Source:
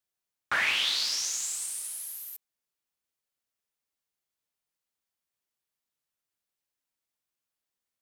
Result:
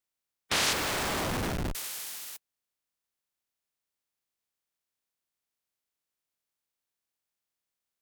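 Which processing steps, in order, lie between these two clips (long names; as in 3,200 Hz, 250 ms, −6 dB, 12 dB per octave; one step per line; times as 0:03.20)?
ceiling on every frequency bin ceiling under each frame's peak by 28 dB
0:00.73–0:01.75: comparator with hysteresis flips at −27 dBFS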